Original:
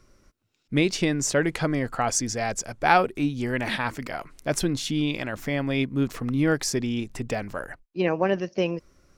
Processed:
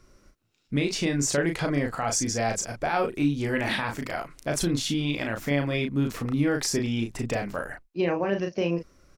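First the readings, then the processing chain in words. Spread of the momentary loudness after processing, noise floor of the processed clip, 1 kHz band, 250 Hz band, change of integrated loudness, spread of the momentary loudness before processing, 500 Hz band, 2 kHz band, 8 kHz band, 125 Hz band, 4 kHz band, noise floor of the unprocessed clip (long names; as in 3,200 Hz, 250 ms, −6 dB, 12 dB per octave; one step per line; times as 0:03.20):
6 LU, −63 dBFS, −4.5 dB, −1.0 dB, −1.5 dB, 8 LU, −1.5 dB, −2.0 dB, 0.0 dB, 0.0 dB, 0.0 dB, −68 dBFS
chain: brickwall limiter −17 dBFS, peak gain reduction 12 dB
double-tracking delay 35 ms −4.5 dB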